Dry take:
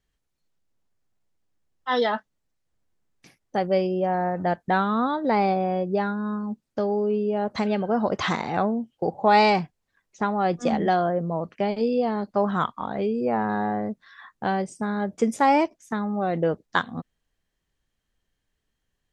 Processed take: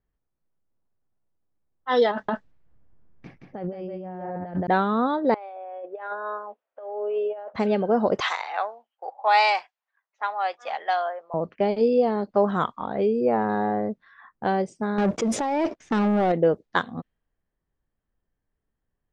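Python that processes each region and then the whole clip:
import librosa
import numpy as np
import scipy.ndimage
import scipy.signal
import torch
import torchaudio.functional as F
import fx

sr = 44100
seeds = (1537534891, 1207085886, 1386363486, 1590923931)

y = fx.chain(x, sr, fx.low_shelf(hz=280.0, db=7.5),
    fx.echo_single(ms=174, db=-5.0),
    fx.over_compress(threshold_db=-32.0, ratio=-1.0), at=(2.11, 4.67))
y = fx.chain(y, sr, fx.ellip_bandpass(low_hz=500.0, high_hz=3400.0, order=3, stop_db=50),
    fx.peak_eq(hz=670.0, db=7.5, octaves=0.22),
    fx.over_compress(threshold_db=-34.0, ratio=-1.0), at=(5.34, 7.54))
y = fx.chain(y, sr, fx.highpass(hz=740.0, slope=24),
    fx.dynamic_eq(hz=2700.0, q=1.2, threshold_db=-39.0, ratio=4.0, max_db=4), at=(8.2, 11.34))
y = fx.chain(y, sr, fx.over_compress(threshold_db=-30.0, ratio=-1.0),
    fx.leveller(passes=3),
    fx.air_absorb(metres=57.0), at=(14.98, 16.32))
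y = fx.env_lowpass(y, sr, base_hz=1300.0, full_db=-20.0)
y = fx.dynamic_eq(y, sr, hz=460.0, q=1.1, threshold_db=-36.0, ratio=4.0, max_db=6)
y = y * 10.0 ** (-1.5 / 20.0)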